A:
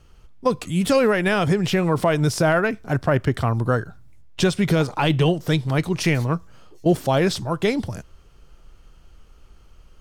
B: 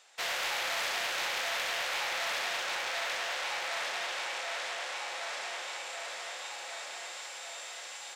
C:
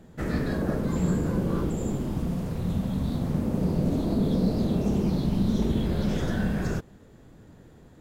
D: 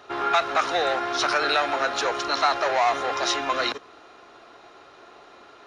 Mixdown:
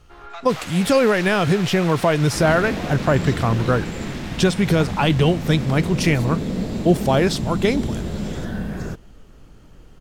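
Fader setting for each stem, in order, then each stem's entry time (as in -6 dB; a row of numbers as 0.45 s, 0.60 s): +1.5 dB, -2.5 dB, -0.5 dB, -16.0 dB; 0.00 s, 0.30 s, 2.15 s, 0.00 s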